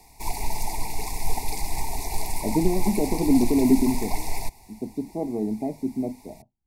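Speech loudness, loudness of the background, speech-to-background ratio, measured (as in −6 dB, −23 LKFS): −25.0 LKFS, −32.0 LKFS, 7.0 dB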